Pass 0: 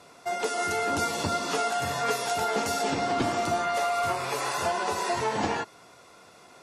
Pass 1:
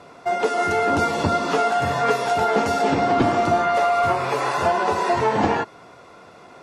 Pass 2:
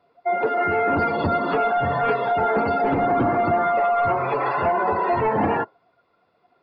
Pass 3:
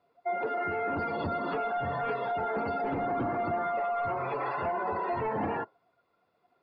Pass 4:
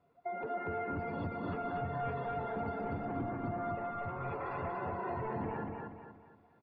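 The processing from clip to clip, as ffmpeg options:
-af "lowpass=f=1700:p=1,volume=2.82"
-af "aresample=11025,asoftclip=type=tanh:threshold=0.15,aresample=44100,afftdn=nr=23:nf=-30,volume=1.26"
-af "alimiter=limit=0.141:level=0:latency=1,volume=0.398"
-filter_complex "[0:a]bass=f=250:g=11,treble=f=4000:g=-11,acompressor=threshold=0.0158:ratio=4,asplit=2[s0][s1];[s1]aecho=0:1:238|476|714|952|1190:0.708|0.283|0.113|0.0453|0.0181[s2];[s0][s2]amix=inputs=2:normalize=0,volume=0.794"

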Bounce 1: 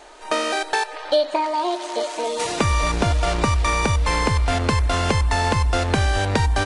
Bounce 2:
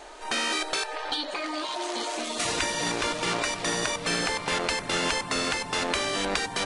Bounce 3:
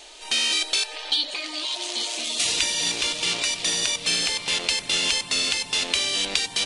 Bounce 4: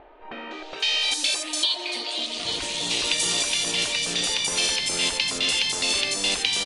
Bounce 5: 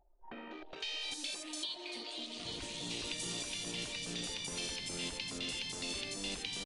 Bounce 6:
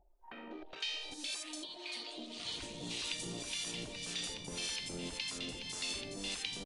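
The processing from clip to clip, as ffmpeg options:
-af "afftfilt=real='re*lt(hypot(re,im),0.251)':imag='im*lt(hypot(re,im),0.251)':win_size=1024:overlap=0.75"
-af "highshelf=f=2100:t=q:w=1.5:g=11.5,volume=0.531"
-filter_complex "[0:a]acrossover=split=1900[s0][s1];[s0]acompressor=mode=upward:threshold=0.00316:ratio=2.5[s2];[s2][s1]amix=inputs=2:normalize=0,acrossover=split=1600|5200[s3][s4][s5];[s4]adelay=510[s6];[s5]adelay=800[s7];[s3][s6][s7]amix=inputs=3:normalize=0,volume=1.26"
-filter_complex "[0:a]anlmdn=2.51,acrossover=split=340[s0][s1];[s1]acompressor=threshold=0.00251:ratio=1.5[s2];[s0][s2]amix=inputs=2:normalize=0,volume=0.501"
-filter_complex "[0:a]acrossover=split=860[s0][s1];[s0]aeval=exprs='val(0)*(1-0.7/2+0.7/2*cos(2*PI*1.8*n/s))':c=same[s2];[s1]aeval=exprs='val(0)*(1-0.7/2-0.7/2*cos(2*PI*1.8*n/s))':c=same[s3];[s2][s3]amix=inputs=2:normalize=0,volume=1.33"

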